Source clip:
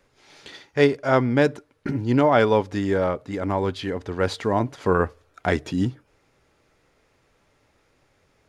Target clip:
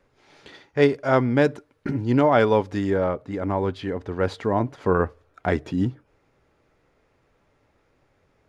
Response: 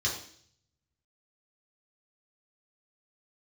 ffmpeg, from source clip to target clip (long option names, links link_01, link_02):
-af "asetnsamples=nb_out_samples=441:pad=0,asendcmd='0.82 highshelf g -4;2.9 highshelf g -10.5',highshelf=frequency=2900:gain=-10"